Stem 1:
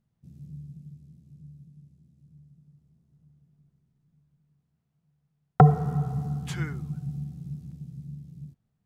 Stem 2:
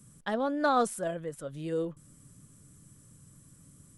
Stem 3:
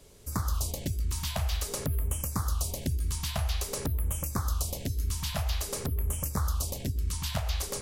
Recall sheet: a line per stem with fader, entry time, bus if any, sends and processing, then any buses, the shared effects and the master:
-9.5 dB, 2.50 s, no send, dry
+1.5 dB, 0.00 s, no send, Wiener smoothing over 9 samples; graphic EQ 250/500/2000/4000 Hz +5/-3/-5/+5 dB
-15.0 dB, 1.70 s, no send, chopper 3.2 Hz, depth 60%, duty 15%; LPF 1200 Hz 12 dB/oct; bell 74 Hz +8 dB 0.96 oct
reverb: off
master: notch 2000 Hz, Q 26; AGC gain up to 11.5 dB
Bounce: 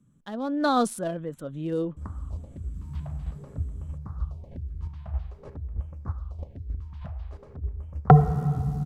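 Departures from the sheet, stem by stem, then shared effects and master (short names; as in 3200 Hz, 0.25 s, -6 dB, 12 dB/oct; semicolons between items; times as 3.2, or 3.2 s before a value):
stem 2 +1.5 dB -> -7.5 dB; master: missing notch 2000 Hz, Q 26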